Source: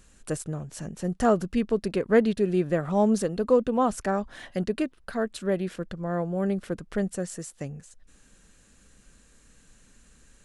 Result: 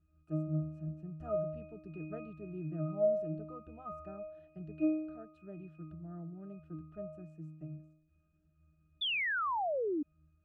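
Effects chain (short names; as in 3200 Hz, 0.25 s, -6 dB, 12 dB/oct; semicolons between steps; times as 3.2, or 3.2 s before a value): octave resonator D#, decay 0.78 s; painted sound fall, 9.01–10.03, 280–3600 Hz -40 dBFS; gain +6.5 dB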